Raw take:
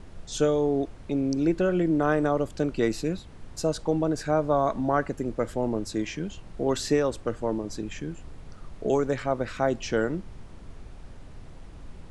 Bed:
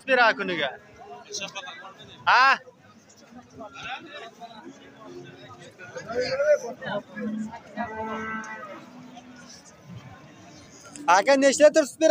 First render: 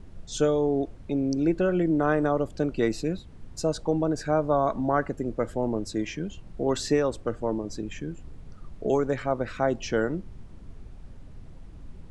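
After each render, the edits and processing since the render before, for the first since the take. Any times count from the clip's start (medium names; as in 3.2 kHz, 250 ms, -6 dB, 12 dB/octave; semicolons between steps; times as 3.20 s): noise reduction 7 dB, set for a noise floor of -45 dBFS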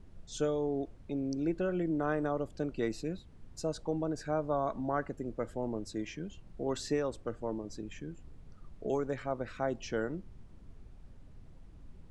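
trim -8.5 dB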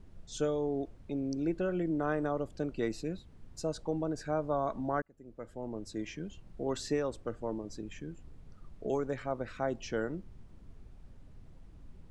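5.02–6.07 s: fade in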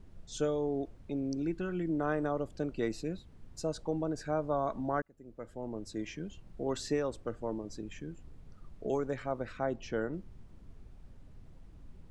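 1.42–1.89 s: peaking EQ 580 Hz -13 dB 0.64 oct; 9.52–10.12 s: treble shelf 5.5 kHz -> 3.6 kHz -8.5 dB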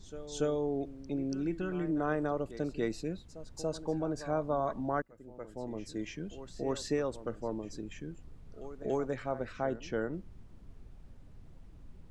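pre-echo 285 ms -14 dB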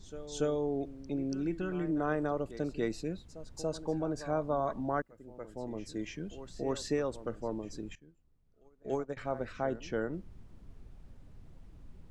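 7.95–9.17 s: upward expansion 2.5:1, over -43 dBFS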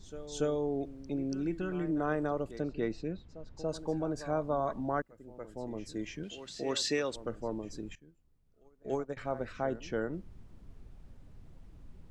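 2.60–3.69 s: distance through air 150 m; 6.23–7.16 s: frequency weighting D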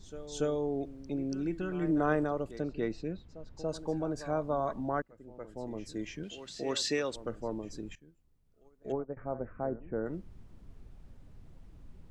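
1.82–2.24 s: gain +3.5 dB; 4.89–5.56 s: treble shelf 5.7 kHz -6.5 dB; 8.92–10.06 s: Gaussian low-pass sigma 6.4 samples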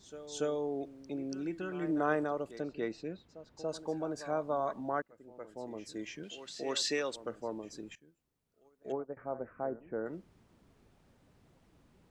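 high-pass 350 Hz 6 dB/octave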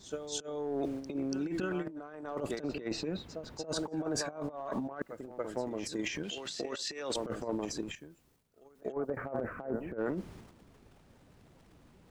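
transient shaper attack +8 dB, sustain +12 dB; compressor with a negative ratio -35 dBFS, ratio -0.5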